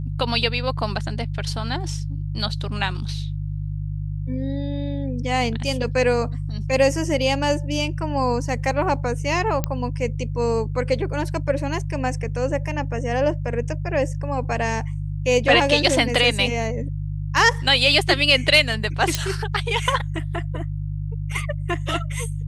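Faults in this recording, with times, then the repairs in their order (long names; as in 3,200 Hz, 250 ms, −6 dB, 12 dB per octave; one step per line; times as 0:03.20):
mains hum 50 Hz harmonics 3 −27 dBFS
0:09.64: click −8 dBFS
0:19.15: click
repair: click removal
hum removal 50 Hz, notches 3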